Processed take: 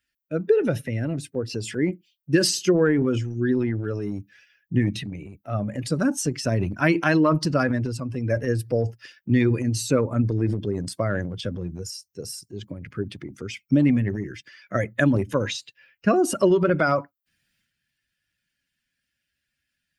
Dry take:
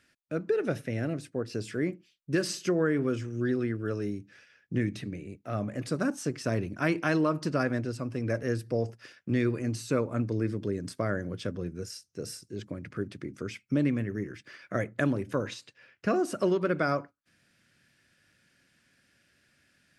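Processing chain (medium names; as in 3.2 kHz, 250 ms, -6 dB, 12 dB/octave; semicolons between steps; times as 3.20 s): expander on every frequency bin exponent 1.5; 13.50–15.57 s: peaking EQ 6.2 kHz +4.5 dB 1.3 oct; transient shaper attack +2 dB, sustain +8 dB; trim +8.5 dB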